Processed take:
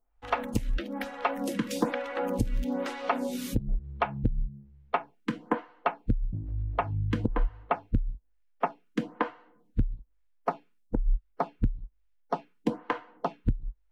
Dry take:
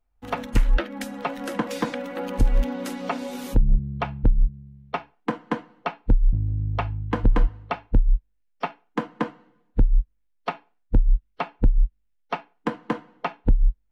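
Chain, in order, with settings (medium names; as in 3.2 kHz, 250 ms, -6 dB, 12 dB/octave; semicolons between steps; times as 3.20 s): compression 10:1, threshold -20 dBFS, peak gain reduction 9 dB; lamp-driven phase shifter 1.1 Hz; trim +2 dB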